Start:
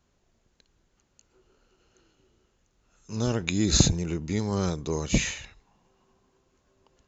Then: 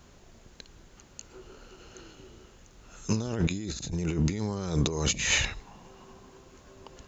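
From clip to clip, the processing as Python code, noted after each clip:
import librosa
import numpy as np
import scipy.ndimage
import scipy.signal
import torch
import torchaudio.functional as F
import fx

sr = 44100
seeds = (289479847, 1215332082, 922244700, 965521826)

y = fx.over_compress(x, sr, threshold_db=-37.0, ratio=-1.0)
y = F.gain(torch.from_numpy(y), 6.5).numpy()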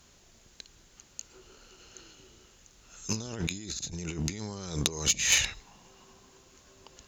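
y = fx.cheby_harmonics(x, sr, harmonics=(3, 8), levels_db=(-15, -40), full_scale_db=-8.5)
y = fx.high_shelf(y, sr, hz=2300.0, db=12.0)
y = F.gain(torch.from_numpy(y), -1.0).numpy()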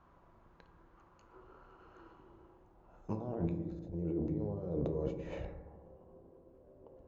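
y = fx.rev_fdn(x, sr, rt60_s=1.4, lf_ratio=1.3, hf_ratio=0.25, size_ms=18.0, drr_db=6.0)
y = fx.filter_sweep_lowpass(y, sr, from_hz=1100.0, to_hz=540.0, start_s=2.05, end_s=4.08, q=2.9)
y = F.gain(torch.from_numpy(y), -4.5).numpy()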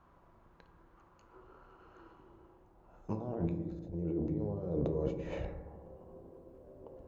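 y = fx.rider(x, sr, range_db=4, speed_s=2.0)
y = F.gain(torch.from_numpy(y), 1.5).numpy()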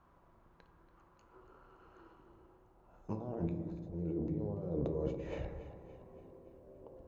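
y = fx.echo_feedback(x, sr, ms=285, feedback_pct=54, wet_db=-14.5)
y = F.gain(torch.from_numpy(y), -2.5).numpy()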